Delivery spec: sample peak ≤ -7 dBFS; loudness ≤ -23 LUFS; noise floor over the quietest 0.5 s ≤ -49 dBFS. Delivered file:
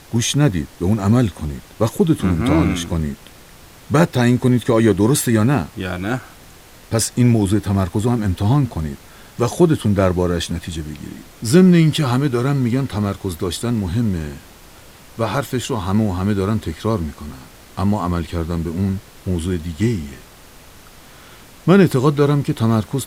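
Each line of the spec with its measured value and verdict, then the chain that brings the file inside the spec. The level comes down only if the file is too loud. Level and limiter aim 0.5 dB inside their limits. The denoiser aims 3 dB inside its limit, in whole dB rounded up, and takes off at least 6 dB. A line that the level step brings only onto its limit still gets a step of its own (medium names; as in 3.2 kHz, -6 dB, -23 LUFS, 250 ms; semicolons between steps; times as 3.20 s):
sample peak -1.5 dBFS: fail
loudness -18.0 LUFS: fail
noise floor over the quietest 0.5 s -43 dBFS: fail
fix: noise reduction 6 dB, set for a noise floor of -43 dBFS; trim -5.5 dB; peak limiter -7.5 dBFS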